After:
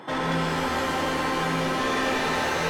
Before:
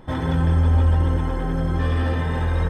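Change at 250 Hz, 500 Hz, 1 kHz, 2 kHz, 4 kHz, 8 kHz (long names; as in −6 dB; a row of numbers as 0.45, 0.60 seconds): −2.5 dB, +2.5 dB, +5.5 dB, +7.0 dB, +10.0 dB, can't be measured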